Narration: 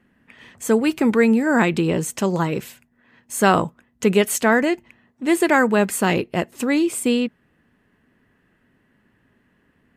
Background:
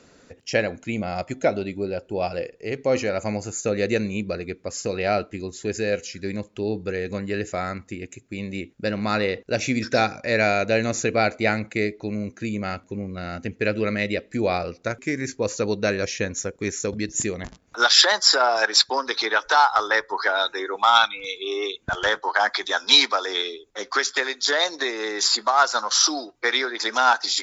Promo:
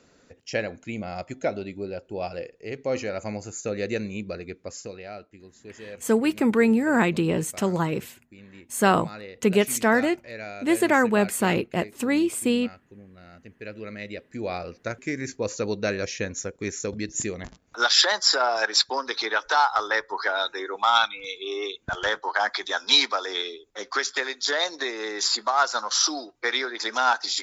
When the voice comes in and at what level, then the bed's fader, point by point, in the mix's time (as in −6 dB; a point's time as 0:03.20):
5.40 s, −3.5 dB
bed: 0:04.71 −5.5 dB
0:05.08 −17 dB
0:13.46 −17 dB
0:14.95 −3.5 dB